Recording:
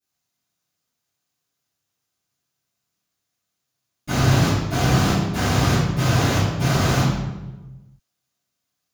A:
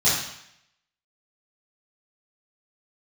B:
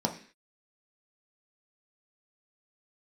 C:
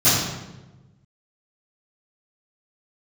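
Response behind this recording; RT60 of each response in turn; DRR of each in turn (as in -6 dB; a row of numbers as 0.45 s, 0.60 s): C; 0.70 s, 0.45 s, 1.1 s; -11.0 dB, 1.5 dB, -20.0 dB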